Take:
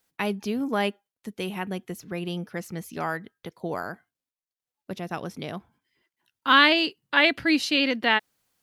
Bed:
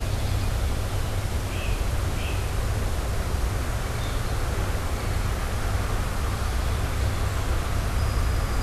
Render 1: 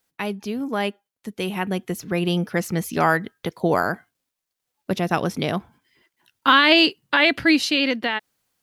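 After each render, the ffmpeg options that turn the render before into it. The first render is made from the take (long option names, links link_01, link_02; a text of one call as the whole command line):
ffmpeg -i in.wav -af "alimiter=limit=-13.5dB:level=0:latency=1:release=102,dynaudnorm=framelen=380:gausssize=9:maxgain=11.5dB" out.wav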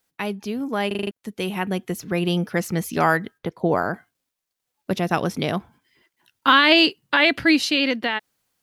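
ffmpeg -i in.wav -filter_complex "[0:a]asplit=3[link_01][link_02][link_03];[link_01]afade=type=out:start_time=3.37:duration=0.02[link_04];[link_02]highshelf=frequency=2500:gain=-11.5,afade=type=in:start_time=3.37:duration=0.02,afade=type=out:start_time=3.93:duration=0.02[link_05];[link_03]afade=type=in:start_time=3.93:duration=0.02[link_06];[link_04][link_05][link_06]amix=inputs=3:normalize=0,asplit=7[link_07][link_08][link_09][link_10][link_11][link_12][link_13];[link_07]atrim=end=0.912[link_14];[link_08]atrim=start=0.868:end=0.912[link_15];[link_09]atrim=start=0.868:end=0.912[link_16];[link_10]atrim=start=0.868:end=0.912[link_17];[link_11]atrim=start=0.868:end=0.912[link_18];[link_12]atrim=start=0.868:end=0.912[link_19];[link_13]atrim=start=1.108[link_20];[link_14][link_15]acrossfade=duration=0.004:curve1=hsin:curve2=hsin[link_21];[link_21][link_16]acrossfade=duration=0.004:curve1=hsin:curve2=hsin[link_22];[link_22][link_17]acrossfade=duration=0.004:curve1=hsin:curve2=hsin[link_23];[link_23][link_18]acrossfade=duration=0.004:curve1=hsin:curve2=hsin[link_24];[link_24][link_19]acrossfade=duration=0.004:curve1=hsin:curve2=hsin[link_25];[link_25][link_20]acrossfade=duration=0.004:curve1=hsin:curve2=hsin" out.wav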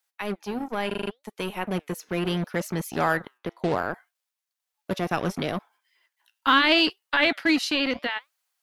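ffmpeg -i in.wav -filter_complex "[0:a]flanger=delay=2.3:depth=6.5:regen=86:speed=0.71:shape=sinusoidal,acrossover=split=600[link_01][link_02];[link_01]acrusher=bits=4:mix=0:aa=0.5[link_03];[link_03][link_02]amix=inputs=2:normalize=0" out.wav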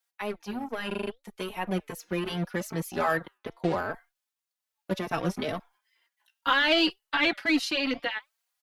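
ffmpeg -i in.wav -filter_complex "[0:a]aeval=exprs='0.531*(cos(1*acos(clip(val(0)/0.531,-1,1)))-cos(1*PI/2))+0.0422*(cos(2*acos(clip(val(0)/0.531,-1,1)))-cos(2*PI/2))':channel_layout=same,asplit=2[link_01][link_02];[link_02]adelay=3.9,afreqshift=2.5[link_03];[link_01][link_03]amix=inputs=2:normalize=1" out.wav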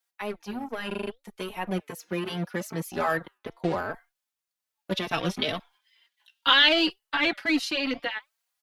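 ffmpeg -i in.wav -filter_complex "[0:a]asettb=1/sr,asplit=3[link_01][link_02][link_03];[link_01]atrim=end=1.804[link_04];[link_02]atrim=start=1.8:end=2.87,asetpts=PTS-STARTPTS,afade=type=in:duration=0.004:curve=qsin,afade=type=out:start_time=1.066:duration=0.004:curve=qsin,highpass=99[link_05];[link_03]atrim=start=2.866[link_06];[link_04][link_05]acrossfade=duration=0.004:curve1=hsin:curve2=qsin[link_07];[link_07][link_06]acrossfade=duration=0.004:curve1=qsin:curve2=hsin,asettb=1/sr,asplit=3[link_08][link_09][link_10];[link_08]atrim=end=4.924[link_11];[link_09]atrim=start=4.92:end=6.69,asetpts=PTS-STARTPTS,afade=type=in:duration=0.004:curve=qsin,afade=type=out:start_time=1.766:duration=0.004:curve=qsin,equalizer=frequency=3400:width_type=o:width=1.1:gain=12[link_12];[link_10]atrim=start=6.686[link_13];[link_11][link_12]acrossfade=duration=0.004:curve1=hsin:curve2=qsin[link_14];[link_14][link_13]acrossfade=duration=0.004:curve1=qsin:curve2=hsin" out.wav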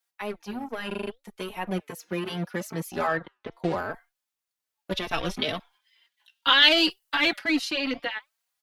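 ffmpeg -i in.wav -filter_complex "[0:a]asettb=1/sr,asplit=3[link_01][link_02][link_03];[link_01]atrim=end=3.074[link_04];[link_02]atrim=start=3.07:end=3.53,asetpts=PTS-STARTPTS,afade=type=in:duration=0.004:curve=qsin,afade=type=out:start_time=0.456:duration=0.004:curve=qsin,lowpass=5100[link_05];[link_03]atrim=start=3.526[link_06];[link_04][link_05]acrossfade=duration=0.004:curve1=hsin:curve2=qsin[link_07];[link_07][link_06]acrossfade=duration=0.004:curve1=qsin:curve2=hsin,asplit=3[link_08][link_09][link_10];[link_08]afade=type=out:start_time=4.91:duration=0.02[link_11];[link_09]asubboost=boost=8:cutoff=56,afade=type=in:start_time=4.91:duration=0.02,afade=type=out:start_time=5.36:duration=0.02[link_12];[link_10]afade=type=in:start_time=5.36:duration=0.02[link_13];[link_11][link_12][link_13]amix=inputs=3:normalize=0,asettb=1/sr,asplit=3[link_14][link_15][link_16];[link_14]atrim=end=6.624[link_17];[link_15]atrim=start=6.62:end=7.39,asetpts=PTS-STARTPTS,afade=type=in:duration=0.004:curve=qsin,afade=type=out:start_time=0.766:duration=0.004:curve=qsin,highshelf=frequency=4900:gain=10.5[link_18];[link_16]atrim=start=7.386[link_19];[link_17][link_18]acrossfade=duration=0.004:curve1=hsin:curve2=qsin[link_20];[link_20][link_19]acrossfade=duration=0.004:curve1=qsin:curve2=hsin" out.wav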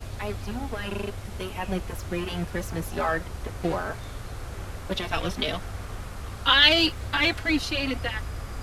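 ffmpeg -i in.wav -i bed.wav -filter_complex "[1:a]volume=-10dB[link_01];[0:a][link_01]amix=inputs=2:normalize=0" out.wav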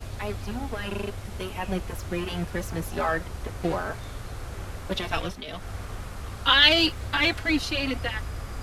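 ffmpeg -i in.wav -filter_complex "[0:a]asplit=3[link_01][link_02][link_03];[link_01]atrim=end=5.42,asetpts=PTS-STARTPTS,afade=type=out:start_time=5.17:duration=0.25:silence=0.281838[link_04];[link_02]atrim=start=5.42:end=5.46,asetpts=PTS-STARTPTS,volume=-11dB[link_05];[link_03]atrim=start=5.46,asetpts=PTS-STARTPTS,afade=type=in:duration=0.25:silence=0.281838[link_06];[link_04][link_05][link_06]concat=n=3:v=0:a=1" out.wav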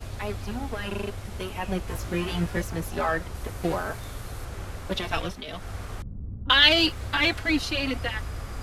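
ffmpeg -i in.wav -filter_complex "[0:a]asettb=1/sr,asplit=3[link_01][link_02][link_03];[link_01]atrim=end=1.864[link_04];[link_02]atrim=start=1.86:end=2.62,asetpts=PTS-STARTPTS,afade=type=in:duration=0.004:curve=qsin,afade=type=out:start_time=0.756:duration=0.004:curve=qsin,asplit=2[link_05][link_06];[link_06]adelay=18,volume=-2dB[link_07];[link_05][link_07]amix=inputs=2:normalize=0,atrim=end_sample=33516[link_08];[link_03]atrim=start=2.616[link_09];[link_04][link_08]acrossfade=duration=0.004:curve1=hsin:curve2=qsin[link_10];[link_10][link_09]acrossfade=duration=0.004:curve1=qsin:curve2=hsin,asettb=1/sr,asplit=3[link_11][link_12][link_13];[link_11]atrim=end=3.354[link_14];[link_12]atrim=start=3.35:end=4.45,asetpts=PTS-STARTPTS,afade=type=in:duration=0.004:curve=qsin,afade=type=out:start_time=1.096:duration=0.004:curve=qsin,highshelf=frequency=11000:gain=11[link_15];[link_13]atrim=start=4.446[link_16];[link_14][link_15]acrossfade=duration=0.004:curve1=hsin:curve2=qsin[link_17];[link_17][link_16]acrossfade=duration=0.004:curve1=qsin:curve2=hsin,asettb=1/sr,asplit=3[link_18][link_19][link_20];[link_18]atrim=end=6.024[link_21];[link_19]atrim=start=6.02:end=6.5,asetpts=PTS-STARTPTS,afade=type=in:duration=0.004:curve=qsin,afade=type=out:start_time=0.476:duration=0.004:curve=qsin,lowpass=frequency=210:width_type=q:width=1.6[link_22];[link_20]atrim=start=6.496[link_23];[link_21][link_22]acrossfade=duration=0.004:curve1=hsin:curve2=qsin[link_24];[link_24][link_23]acrossfade=duration=0.004:curve1=qsin:curve2=hsin" out.wav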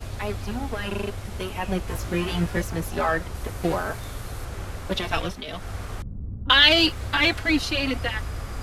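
ffmpeg -i in.wav -af "volume=2.5dB,alimiter=limit=-3dB:level=0:latency=1" out.wav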